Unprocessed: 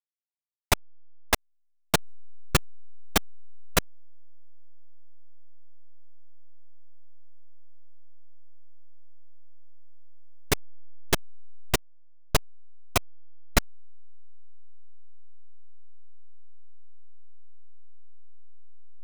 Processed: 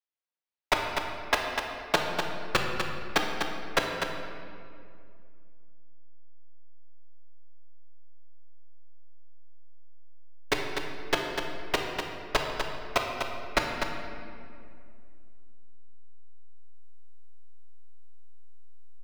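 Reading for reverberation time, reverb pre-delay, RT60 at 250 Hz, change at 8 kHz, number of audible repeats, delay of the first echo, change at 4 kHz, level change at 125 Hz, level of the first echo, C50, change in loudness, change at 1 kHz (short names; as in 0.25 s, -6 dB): 2.4 s, 3 ms, 3.0 s, -8.5 dB, 1, 0.248 s, +0.5 dB, -8.0 dB, -6.5 dB, 1.5 dB, -2.0 dB, +3.5 dB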